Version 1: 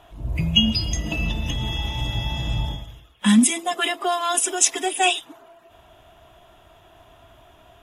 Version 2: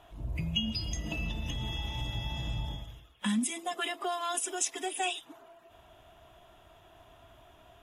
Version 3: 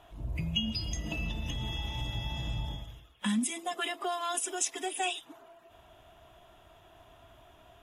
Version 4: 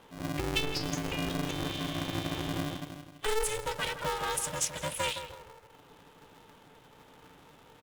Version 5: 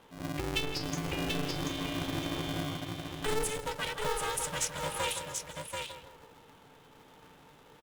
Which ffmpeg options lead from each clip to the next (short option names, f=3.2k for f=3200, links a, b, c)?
-af "acompressor=threshold=-28dB:ratio=2,volume=-6dB"
-af anull
-filter_complex "[0:a]asplit=2[a][b];[b]adelay=164,lowpass=f=1.3k:p=1,volume=-7.5dB,asplit=2[c][d];[d]adelay=164,lowpass=f=1.3k:p=1,volume=0.44,asplit=2[e][f];[f]adelay=164,lowpass=f=1.3k:p=1,volume=0.44,asplit=2[g][h];[h]adelay=164,lowpass=f=1.3k:p=1,volume=0.44,asplit=2[i][j];[j]adelay=164,lowpass=f=1.3k:p=1,volume=0.44[k];[a][c][e][g][i][k]amix=inputs=6:normalize=0,aeval=exprs='val(0)*sgn(sin(2*PI*220*n/s))':c=same"
-af "aecho=1:1:735:0.596,volume=-2dB"